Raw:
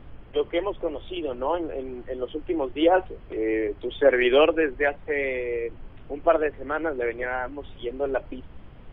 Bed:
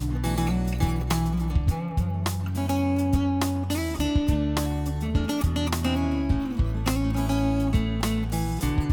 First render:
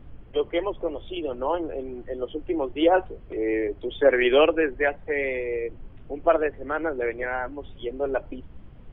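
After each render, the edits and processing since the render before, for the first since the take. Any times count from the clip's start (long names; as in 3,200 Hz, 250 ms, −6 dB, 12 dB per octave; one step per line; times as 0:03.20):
broadband denoise 6 dB, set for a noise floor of −46 dBFS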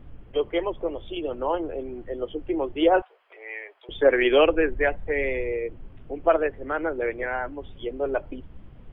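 0:03.02–0:03.89: high-pass filter 790 Hz 24 dB per octave
0:04.46–0:05.52: low-shelf EQ 98 Hz +11 dB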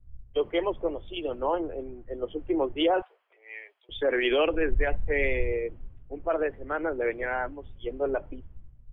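brickwall limiter −18 dBFS, peak gain reduction 11.5 dB
multiband upward and downward expander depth 100%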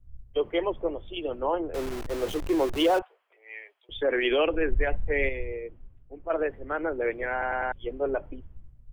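0:01.74–0:02.99: converter with a step at zero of −30 dBFS
0:05.29–0:06.30: clip gain −6 dB
0:07.32: stutter in place 0.10 s, 4 plays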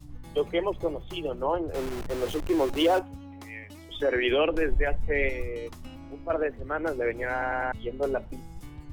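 mix in bed −20 dB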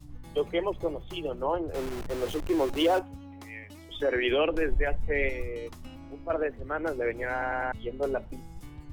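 level −1.5 dB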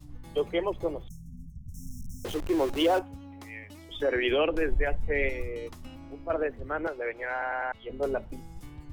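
0:01.08–0:02.25: linear-phase brick-wall band-stop 250–5,300 Hz
0:06.87–0:07.90: three-way crossover with the lows and the highs turned down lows −14 dB, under 460 Hz, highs −14 dB, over 4,900 Hz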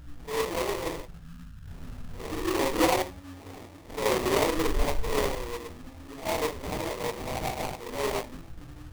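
random phases in long frames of 200 ms
sample-rate reduction 1,500 Hz, jitter 20%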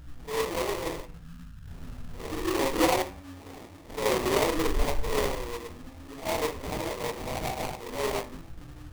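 hum removal 96.73 Hz, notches 28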